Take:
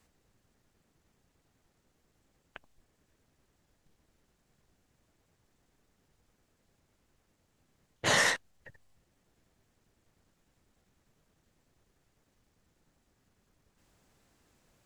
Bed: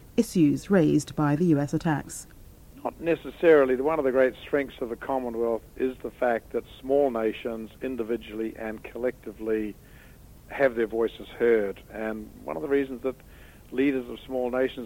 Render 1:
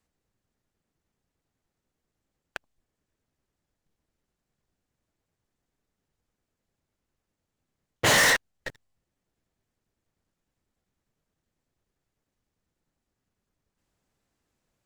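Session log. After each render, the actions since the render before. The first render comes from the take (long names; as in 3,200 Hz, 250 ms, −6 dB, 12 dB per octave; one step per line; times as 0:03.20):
leveller curve on the samples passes 5
brickwall limiter −17 dBFS, peak gain reduction 4 dB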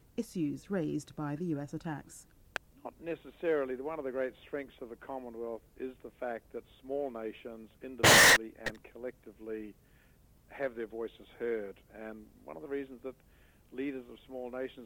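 mix in bed −13.5 dB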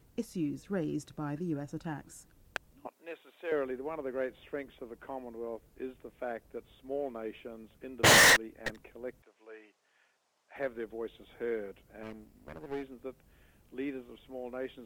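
0:02.87–0:03.52: Bessel high-pass filter 690 Hz
0:09.22–0:10.56: Chebyshev band-pass filter 760–6,300 Hz
0:12.03–0:12.83: lower of the sound and its delayed copy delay 0.4 ms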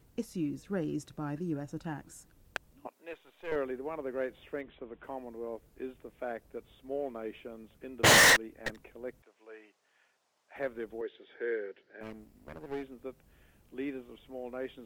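0:03.13–0:03.56: gain on one half-wave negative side −7 dB
0:04.61–0:05.04: bad sample-rate conversion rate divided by 6×, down none, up filtered
0:11.01–0:12.01: loudspeaker in its box 380–4,700 Hz, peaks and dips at 390 Hz +8 dB, 700 Hz −6 dB, 1,100 Hz −10 dB, 1,700 Hz +10 dB, 2,600 Hz −3 dB, 4,500 Hz +3 dB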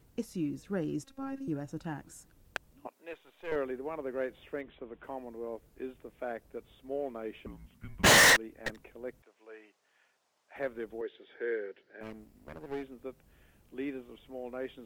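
0:01.04–0:01.48: phases set to zero 271 Hz
0:07.46–0:08.06: frequency shifter −280 Hz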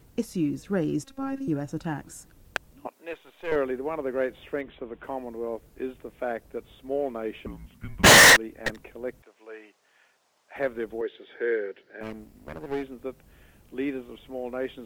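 level +7.5 dB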